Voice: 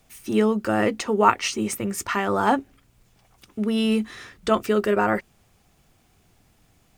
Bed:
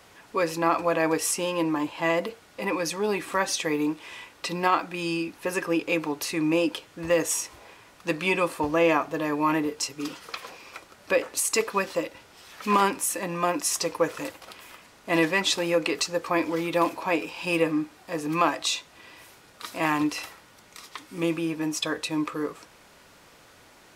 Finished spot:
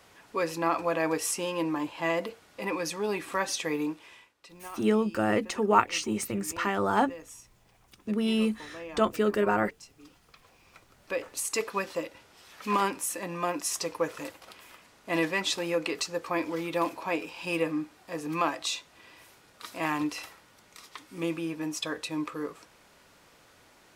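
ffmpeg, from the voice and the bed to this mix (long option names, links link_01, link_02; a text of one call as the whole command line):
ffmpeg -i stem1.wav -i stem2.wav -filter_complex "[0:a]adelay=4500,volume=-4.5dB[link_01];[1:a]volume=12dB,afade=type=out:start_time=3.79:duration=0.55:silence=0.141254,afade=type=in:start_time=10.41:duration=1.26:silence=0.158489[link_02];[link_01][link_02]amix=inputs=2:normalize=0" out.wav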